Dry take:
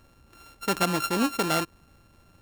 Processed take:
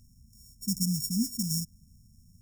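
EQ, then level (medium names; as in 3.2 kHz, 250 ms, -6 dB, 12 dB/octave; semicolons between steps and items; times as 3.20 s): brick-wall FIR band-stop 250–5100 Hz; peaking EQ 3.8 kHz +5.5 dB 0.66 oct; +2.0 dB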